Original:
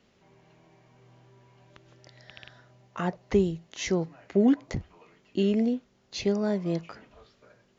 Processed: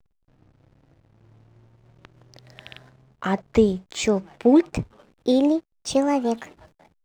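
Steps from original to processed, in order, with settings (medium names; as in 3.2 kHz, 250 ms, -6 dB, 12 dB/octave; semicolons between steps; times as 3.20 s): gliding tape speed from 76% -> 145%; hysteresis with a dead band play -49.5 dBFS; trim +6 dB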